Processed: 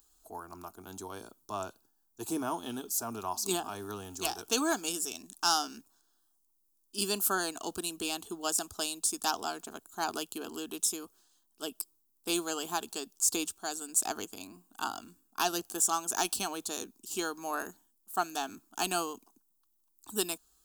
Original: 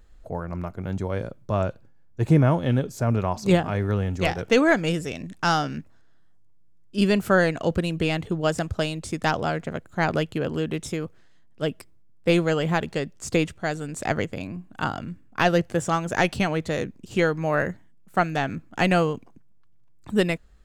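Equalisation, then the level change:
RIAA equalisation recording
high-shelf EQ 6,800 Hz +7.5 dB
phaser with its sweep stopped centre 540 Hz, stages 6
−5.5 dB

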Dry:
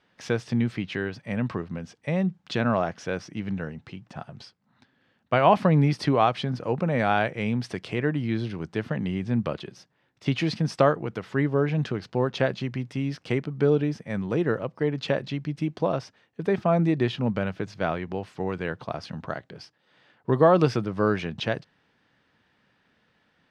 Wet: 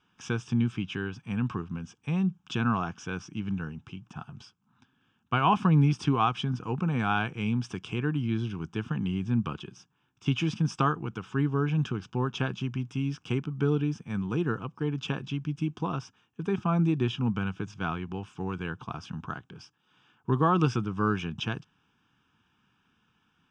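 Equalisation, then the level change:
phaser with its sweep stopped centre 2,900 Hz, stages 8
0.0 dB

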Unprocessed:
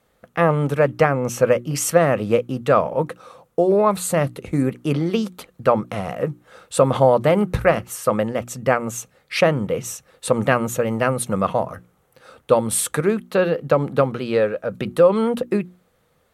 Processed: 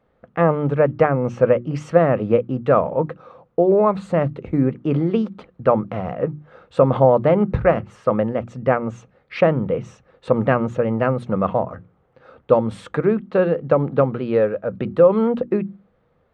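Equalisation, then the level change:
head-to-tape spacing loss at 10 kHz 39 dB
mains-hum notches 50/100/150/200 Hz
+3.0 dB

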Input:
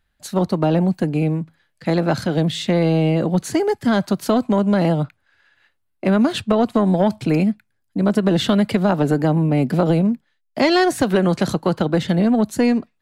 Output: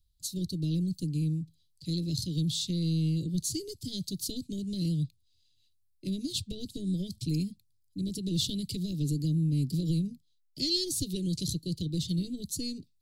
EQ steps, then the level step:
Chebyshev band-stop filter 240–4,100 Hz, order 3
phaser with its sweep stopped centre 540 Hz, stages 4
0.0 dB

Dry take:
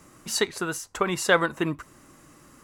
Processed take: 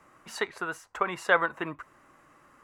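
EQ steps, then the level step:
three-way crossover with the lows and the highs turned down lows −12 dB, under 540 Hz, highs −16 dB, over 2,500 Hz
0.0 dB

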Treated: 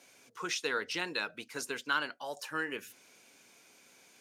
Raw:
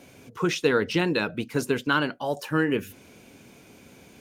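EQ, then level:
resonant band-pass 4,400 Hz, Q 0.52
parametric band 3,000 Hz −6 dB 1.2 octaves
0.0 dB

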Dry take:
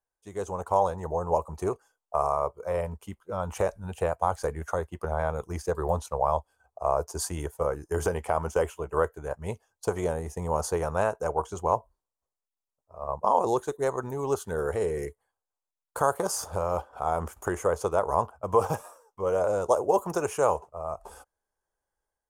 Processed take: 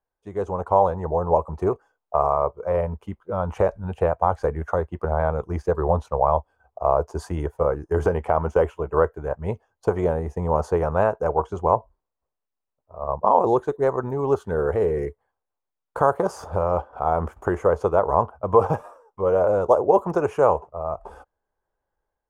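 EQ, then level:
high-shelf EQ 4,700 Hz −10.5 dB
parametric band 12,000 Hz −14 dB 2.7 octaves
+7.0 dB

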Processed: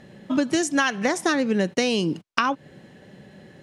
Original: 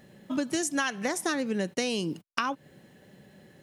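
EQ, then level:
high-frequency loss of the air 57 metres
+7.5 dB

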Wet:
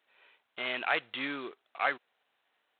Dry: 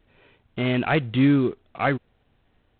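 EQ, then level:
high-pass filter 850 Hz 12 dB per octave
−3.0 dB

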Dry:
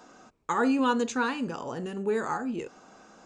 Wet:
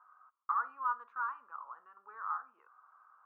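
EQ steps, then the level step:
flat-topped band-pass 1,200 Hz, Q 3.6
high-frequency loss of the air 150 metres
0.0 dB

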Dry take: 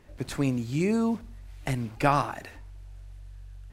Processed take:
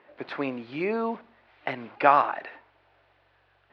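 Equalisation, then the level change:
Savitzky-Golay smoothing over 15 samples
high-pass filter 550 Hz 12 dB per octave
high-frequency loss of the air 380 metres
+8.0 dB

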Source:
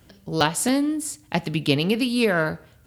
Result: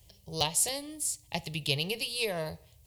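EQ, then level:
parametric band 470 Hz −10.5 dB 3 octaves
phaser with its sweep stopped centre 600 Hz, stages 4
0.0 dB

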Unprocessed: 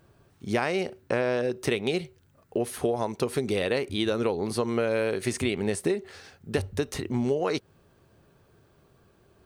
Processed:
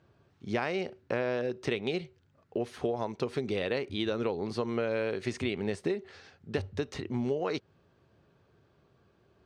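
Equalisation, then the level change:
high-pass filter 59 Hz
high-frequency loss of the air 180 metres
high-shelf EQ 4,500 Hz +10 dB
−4.5 dB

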